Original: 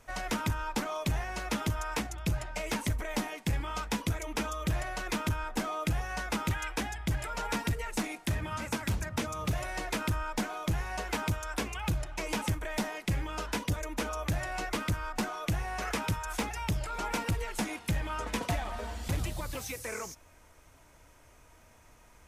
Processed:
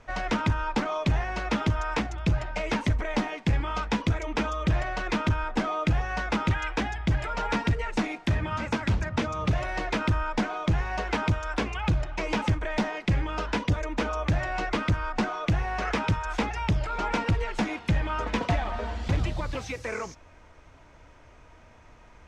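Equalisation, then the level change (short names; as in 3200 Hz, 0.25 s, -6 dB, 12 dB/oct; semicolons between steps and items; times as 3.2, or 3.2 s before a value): air absorption 150 m; +6.5 dB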